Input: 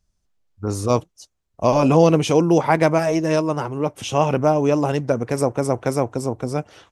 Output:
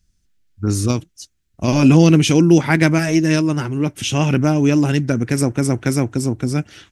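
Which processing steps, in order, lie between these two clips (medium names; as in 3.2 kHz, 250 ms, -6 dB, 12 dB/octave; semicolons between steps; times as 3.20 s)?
high-order bell 720 Hz -13 dB; 0.90–1.68 s: compression, threshold -22 dBFS, peak gain reduction 6 dB; trim +7 dB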